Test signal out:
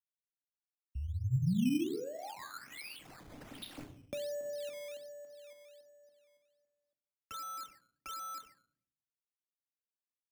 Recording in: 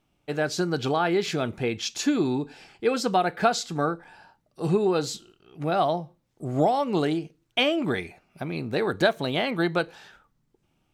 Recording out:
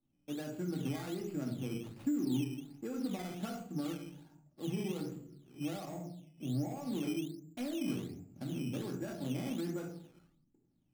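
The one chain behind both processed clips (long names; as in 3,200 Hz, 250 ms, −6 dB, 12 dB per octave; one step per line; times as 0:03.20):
running median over 25 samples
low-shelf EQ 120 Hz −10.5 dB
rectangular room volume 530 cubic metres, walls furnished, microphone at 2.3 metres
brickwall limiter −16.5 dBFS
downward compressor 2 to 1, threshold −50 dBFS
octave-band graphic EQ 125/250/500/1,000/4,000/8,000 Hz +6/+6/−4/−6/−7/−4 dB
sample-and-hold swept by an LFO 11×, swing 100% 1.3 Hz
multiband upward and downward expander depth 40%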